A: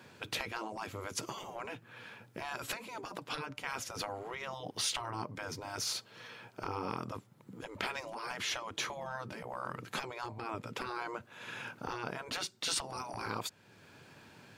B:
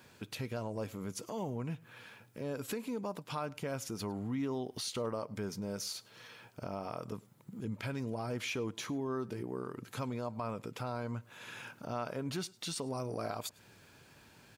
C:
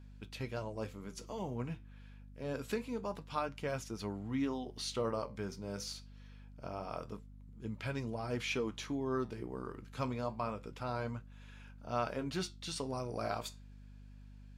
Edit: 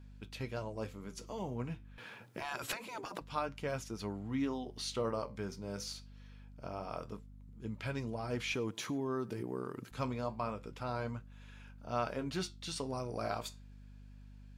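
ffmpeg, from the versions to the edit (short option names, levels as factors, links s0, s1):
-filter_complex "[2:a]asplit=3[s0][s1][s2];[s0]atrim=end=1.982[s3];[0:a]atrim=start=1.978:end=3.212[s4];[s1]atrim=start=3.208:end=8.542[s5];[1:a]atrim=start=8.538:end=9.912[s6];[s2]atrim=start=9.908[s7];[s3][s4]acrossfade=d=0.004:c1=hsin:c2=hsin[s8];[s8][s5]acrossfade=d=0.004:c1=hsin:c2=hsin[s9];[s9][s6]acrossfade=d=0.004:c1=hsin:c2=hsin[s10];[s10][s7]acrossfade=d=0.004:c1=hsin:c2=hsin"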